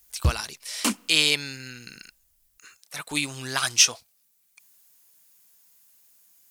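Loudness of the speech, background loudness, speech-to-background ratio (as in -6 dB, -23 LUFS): -23.5 LUFS, -28.5 LUFS, 5.0 dB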